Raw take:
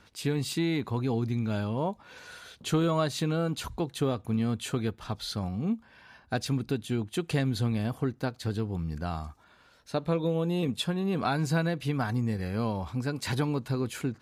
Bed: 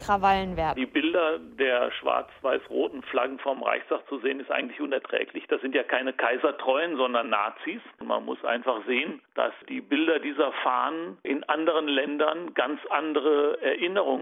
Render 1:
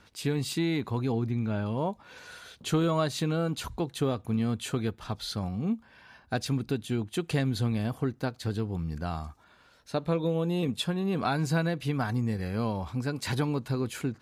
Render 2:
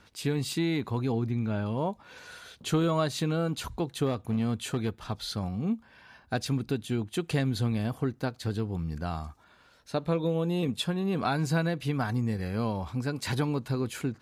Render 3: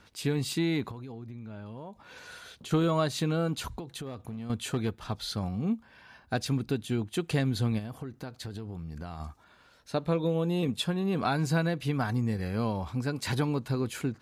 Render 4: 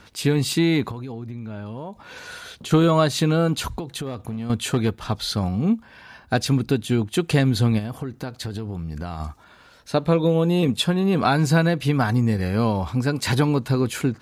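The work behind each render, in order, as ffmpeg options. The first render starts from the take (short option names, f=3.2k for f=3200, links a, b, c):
-filter_complex "[0:a]asettb=1/sr,asplit=3[a][b][c];[a]atrim=end=1.124[d];[b]atrim=start=1.12:end=1.66,asetpts=PTS-STARTPTS,afade=t=in:d=0.004:c=qsin,afade=t=out:st=0.536:d=0.004:c=qsin,acrossover=split=2800[e][f];[f]acompressor=threshold=-60dB:ratio=4:attack=1:release=60[g];[e][g]amix=inputs=2:normalize=0[h];[c]atrim=start=1.656[i];[d][h]acrossfade=d=0.004:c1=hsin:c2=qsin[j];[j][i]acrossfade=d=0.004:c1=qsin:c2=hsin"
-filter_complex "[0:a]asettb=1/sr,asplit=3[a][b][c];[a]atrim=end=4.064[d];[b]atrim=start=4.06:end=5.04,asetpts=PTS-STARTPTS,afade=t=in:d=0.004:c=qsin,afade=t=out:st=0.976:d=0.004:c=qsin,asoftclip=type=hard:threshold=-22.5dB[e];[c]atrim=start=5.036[f];[d][e]acrossfade=d=0.004:c1=hsin:c2=qsin[g];[g][f]acrossfade=d=0.004:c1=qsin:c2=hsin"
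-filter_complex "[0:a]asettb=1/sr,asplit=3[a][b][c];[a]atrim=end=0.914[d];[b]atrim=start=0.91:end=2.71,asetpts=PTS-STARTPTS,afade=t=in:d=0.004:c=qsin,afade=t=out:st=1.796:d=0.004:c=qsin,acompressor=threshold=-39dB:ratio=8:attack=3.2:release=140:knee=1:detection=peak[e];[c]atrim=start=2.706[f];[d][e]acrossfade=d=0.004:c1=hsin:c2=qsin[g];[g][f]acrossfade=d=0.004:c1=qsin:c2=hsin,asettb=1/sr,asplit=3[h][i][j];[h]atrim=end=3.794[k];[i]atrim=start=3.79:end=4.5,asetpts=PTS-STARTPTS,afade=t=in:d=0.004:c=qsin,afade=t=out:st=0.706:d=0.004:c=qsin,acompressor=threshold=-35dB:ratio=10:attack=3.2:release=140:knee=1:detection=peak[l];[j]atrim=start=4.496[m];[k][l]acrossfade=d=0.004:c1=hsin:c2=qsin[n];[n][m]acrossfade=d=0.004:c1=qsin:c2=hsin,asplit=3[o][p][q];[o]afade=t=out:st=7.78:d=0.02[r];[p]acompressor=threshold=-34dB:ratio=12:attack=3.2:release=140:knee=1:detection=peak,afade=t=in:st=7.78:d=0.02,afade=t=out:st=9.19:d=0.02[s];[q]afade=t=in:st=9.19:d=0.02[t];[r][s][t]amix=inputs=3:normalize=0"
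-af "volume=9dB"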